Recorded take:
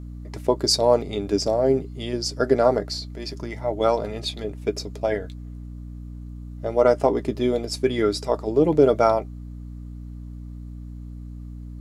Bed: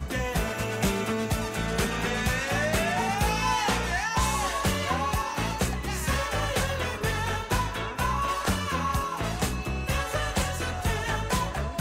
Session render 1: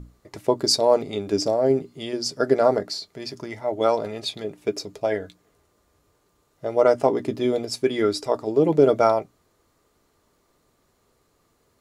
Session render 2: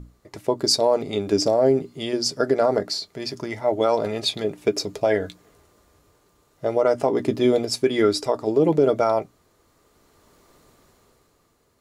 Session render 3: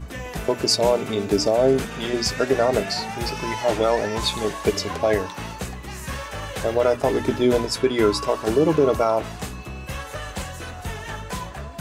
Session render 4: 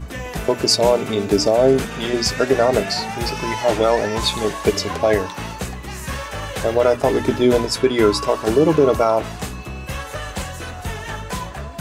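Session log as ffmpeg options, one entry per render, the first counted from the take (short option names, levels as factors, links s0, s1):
-af "bandreject=f=60:t=h:w=6,bandreject=f=120:t=h:w=6,bandreject=f=180:t=h:w=6,bandreject=f=240:t=h:w=6,bandreject=f=300:t=h:w=6"
-af "dynaudnorm=f=160:g=13:m=3.98,alimiter=limit=0.376:level=0:latency=1:release=131"
-filter_complex "[1:a]volume=0.631[s0];[0:a][s0]amix=inputs=2:normalize=0"
-af "volume=1.5"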